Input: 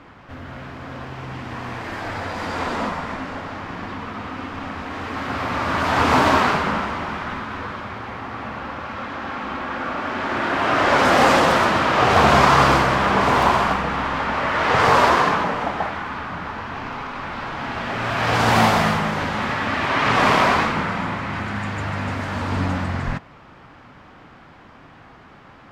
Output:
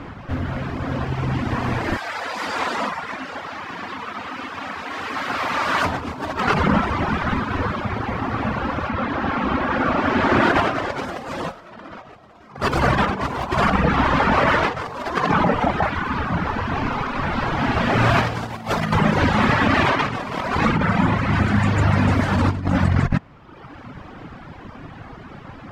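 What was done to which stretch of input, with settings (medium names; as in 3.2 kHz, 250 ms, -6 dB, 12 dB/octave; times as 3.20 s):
1.97–5.85 s: high-pass 1.2 kHz 6 dB/octave
8.88–10.42 s: treble shelf 5.8 kHz -> 12 kHz -9.5 dB
11.47–12.44 s: reverb throw, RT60 1 s, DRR -7.5 dB
whole clip: reverb removal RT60 1.2 s; bass shelf 410 Hz +8 dB; compressor with a negative ratio -22 dBFS, ratio -0.5; trim +2 dB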